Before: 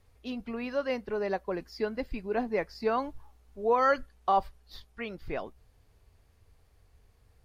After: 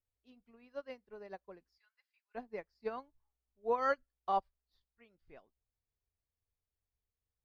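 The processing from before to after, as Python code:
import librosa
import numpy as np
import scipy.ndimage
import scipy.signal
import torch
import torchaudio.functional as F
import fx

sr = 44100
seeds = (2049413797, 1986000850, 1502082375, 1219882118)

y = fx.cheby2_highpass(x, sr, hz=280.0, order=4, stop_db=70, at=(1.78, 2.35))
y = fx.upward_expand(y, sr, threshold_db=-38.0, expansion=2.5)
y = y * librosa.db_to_amplitude(-6.0)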